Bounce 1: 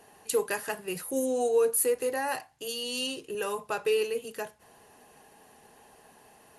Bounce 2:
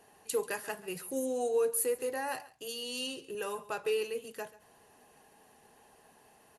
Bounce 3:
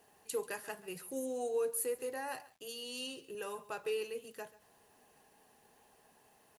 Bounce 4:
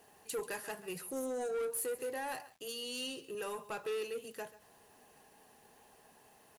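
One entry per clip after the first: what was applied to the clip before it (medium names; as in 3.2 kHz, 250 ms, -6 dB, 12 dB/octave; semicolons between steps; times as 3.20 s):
delay 137 ms -19 dB; trim -5 dB
bit crusher 11-bit; trim -5 dB
saturation -36.5 dBFS, distortion -11 dB; trim +3.5 dB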